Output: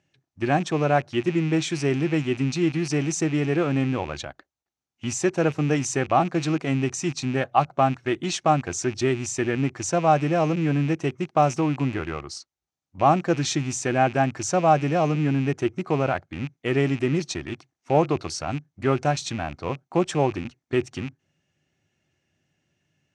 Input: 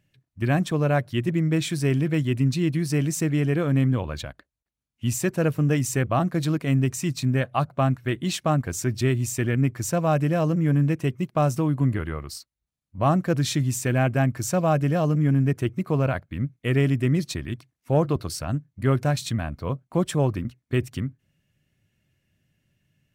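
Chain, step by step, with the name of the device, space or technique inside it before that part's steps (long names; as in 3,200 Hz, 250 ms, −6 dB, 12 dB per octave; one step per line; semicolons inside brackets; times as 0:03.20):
car door speaker with a rattle (loose part that buzzes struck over −30 dBFS, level −29 dBFS; loudspeaker in its box 100–7,600 Hz, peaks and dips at 120 Hz −7 dB, 200 Hz −5 dB, 360 Hz +5 dB, 790 Hz +9 dB, 1,300 Hz +3 dB, 6,100 Hz +6 dB)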